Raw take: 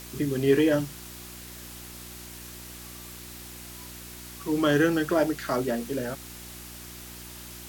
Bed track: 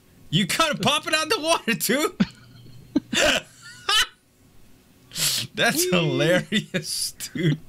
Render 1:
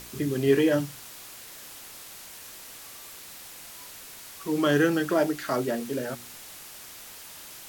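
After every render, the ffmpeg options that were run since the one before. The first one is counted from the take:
-af "bandreject=f=60:t=h:w=4,bandreject=f=120:t=h:w=4,bandreject=f=180:t=h:w=4,bandreject=f=240:t=h:w=4,bandreject=f=300:t=h:w=4,bandreject=f=360:t=h:w=4"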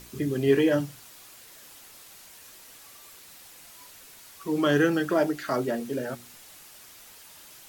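-af "afftdn=nr=6:nf=-45"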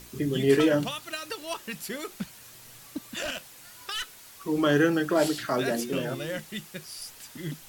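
-filter_complex "[1:a]volume=0.2[s0];[0:a][s0]amix=inputs=2:normalize=0"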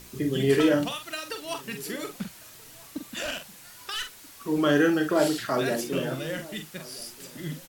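-filter_complex "[0:a]asplit=2[s0][s1];[s1]adelay=45,volume=0.422[s2];[s0][s2]amix=inputs=2:normalize=0,asplit=2[s3][s4];[s4]adelay=1283,volume=0.0891,highshelf=f=4000:g=-28.9[s5];[s3][s5]amix=inputs=2:normalize=0"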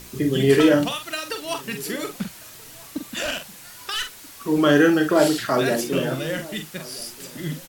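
-af "volume=1.88"

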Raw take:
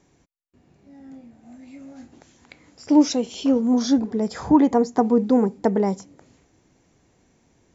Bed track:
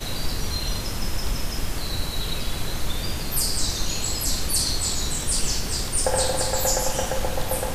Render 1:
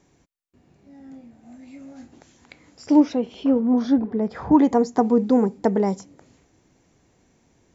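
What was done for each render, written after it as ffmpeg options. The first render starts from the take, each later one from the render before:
-filter_complex "[0:a]asettb=1/sr,asplit=3[s0][s1][s2];[s0]atrim=end=3.004[s3];[s1]atrim=start=3:end=4.52,asetpts=PTS-STARTPTS,afade=t=in:d=0.004:c=qsin,afade=t=out:st=1.516:d=0.004:c=qsin,lowpass=2300[s4];[s2]atrim=start=4.516[s5];[s3][s4]acrossfade=d=0.004:c1=hsin:c2=qsin[s6];[s6][s5]acrossfade=d=0.004:c1=qsin:c2=hsin"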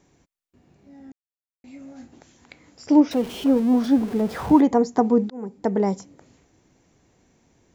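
-filter_complex "[0:a]asettb=1/sr,asplit=3[s0][s1][s2];[s0]atrim=end=3.114[s3];[s1]atrim=start=3.11:end=4.61,asetpts=PTS-STARTPTS,afade=t=in:d=0.004:c=qsin,afade=t=out:st=1.496:d=0.004:c=qsin,aeval=exprs='val(0)+0.5*0.0224*sgn(val(0))':c=same[s4];[s2]atrim=start=4.606[s5];[s3][s4]acrossfade=d=0.004:c1=hsin:c2=qsin[s6];[s6][s5]acrossfade=d=0.004:c1=qsin:c2=hsin,asplit=4[s7][s8][s9][s10];[s7]atrim=end=1.12,asetpts=PTS-STARTPTS,afade=t=out:st=1.116:d=0.004:c=hsin[s11];[s8]atrim=start=1.12:end=1.64,asetpts=PTS-STARTPTS,volume=0[s12];[s9]atrim=start=1.64:end=5.3,asetpts=PTS-STARTPTS,afade=t=in:d=0.004:c=hsin,afade=t=out:st=3.656:d=0.004:c=hsin[s13];[s10]atrim=start=5.3,asetpts=PTS-STARTPTS,afade=t=in:d=0.53[s14];[s11][s12][s13][s14]concat=n=4:v=0:a=1"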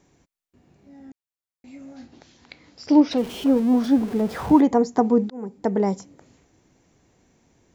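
-filter_complex "[0:a]asettb=1/sr,asplit=3[s0][s1][s2];[s0]atrim=end=1.964[s3];[s1]atrim=start=1.96:end=3.18,asetpts=PTS-STARTPTS,afade=t=in:d=0.004:c=qsin,afade=t=out:st=1.216:d=0.004:c=qsin,lowpass=f=4600:t=q:w=2[s4];[s2]atrim=start=3.176[s5];[s3][s4]acrossfade=d=0.004:c1=hsin:c2=qsin[s6];[s6][s5]acrossfade=d=0.004:c1=qsin:c2=hsin"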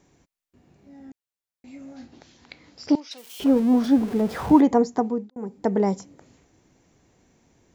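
-filter_complex "[0:a]asettb=1/sr,asplit=3[s0][s1][s2];[s0]atrim=end=2.954[s3];[s1]atrim=start=2.95:end=3.4,asetpts=PTS-STARTPTS,afade=t=in:d=0.004:c=qsin,afade=t=out:st=0.446:d=0.004:c=qsin,aderivative[s4];[s2]atrim=start=3.396[s5];[s3][s4]acrossfade=d=0.004:c1=hsin:c2=qsin[s6];[s6][s5]acrossfade=d=0.004:c1=qsin:c2=hsin,asplit=2[s7][s8];[s7]atrim=end=5.36,asetpts=PTS-STARTPTS,afade=t=out:st=4.8:d=0.56[s9];[s8]atrim=start=5.36,asetpts=PTS-STARTPTS,afade=t=in:d=0.004:c=hsin[s10];[s9][s10]concat=n=2:v=0:a=1"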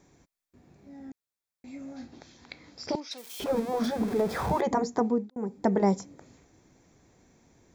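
-af "afftfilt=real='re*lt(hypot(re,im),0.891)':imag='im*lt(hypot(re,im),0.891)':win_size=1024:overlap=0.75,bandreject=f=2900:w=7.5"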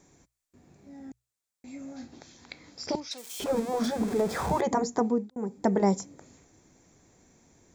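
-af "equalizer=f=7500:w=1.6:g=7,bandreject=f=60:t=h:w=6,bandreject=f=120:t=h:w=6"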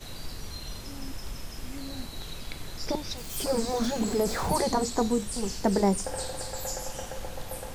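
-filter_complex "[1:a]volume=0.251[s0];[0:a][s0]amix=inputs=2:normalize=0"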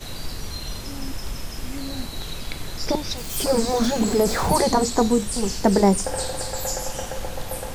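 -af "volume=2.24"

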